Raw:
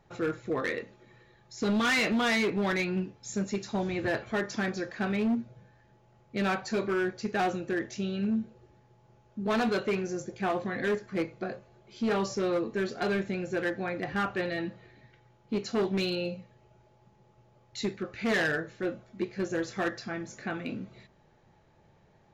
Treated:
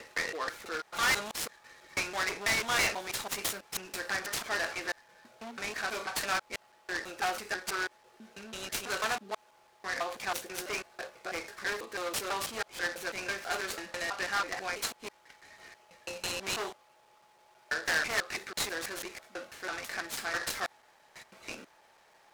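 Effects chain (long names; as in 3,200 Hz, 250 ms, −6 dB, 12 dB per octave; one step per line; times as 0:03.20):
slices reordered back to front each 164 ms, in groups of 6
high-shelf EQ 7,900 Hz +7.5 dB
brickwall limiter −29.5 dBFS, peak gain reduction 9 dB
high-pass filter 900 Hz 12 dB per octave
short delay modulated by noise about 2,800 Hz, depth 0.04 ms
level +8.5 dB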